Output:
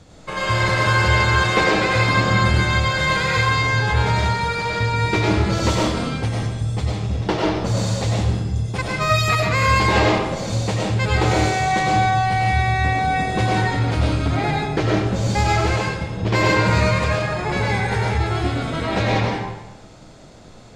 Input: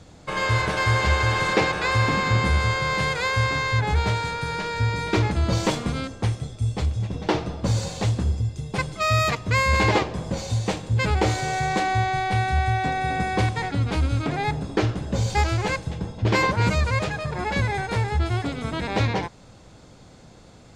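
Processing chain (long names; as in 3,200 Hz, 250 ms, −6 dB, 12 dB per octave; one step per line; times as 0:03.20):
comb and all-pass reverb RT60 0.98 s, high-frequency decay 0.8×, pre-delay 60 ms, DRR −3.5 dB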